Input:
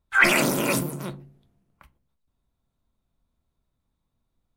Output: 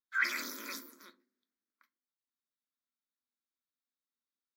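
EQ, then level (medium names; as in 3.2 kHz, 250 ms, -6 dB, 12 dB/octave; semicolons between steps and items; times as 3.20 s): brick-wall FIR high-pass 220 Hz; peaking EQ 370 Hz -13.5 dB 2.5 oct; static phaser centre 2.8 kHz, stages 6; -9.0 dB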